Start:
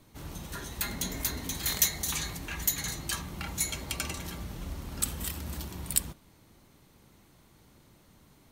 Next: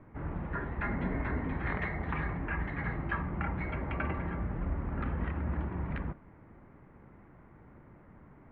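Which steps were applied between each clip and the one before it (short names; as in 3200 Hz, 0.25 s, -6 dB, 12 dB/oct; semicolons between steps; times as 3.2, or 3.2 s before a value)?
steep low-pass 2000 Hz 36 dB/oct; gain +5 dB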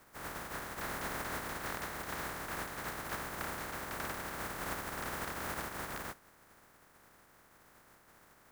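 spectral contrast lowered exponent 0.12; resonant high shelf 2100 Hz -7.5 dB, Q 1.5; gain -3.5 dB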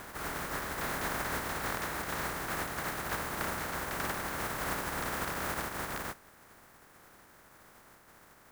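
reverse echo 0.624 s -7 dB; gain +4 dB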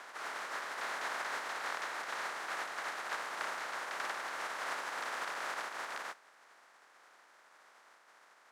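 BPF 650–6200 Hz; gain -1.5 dB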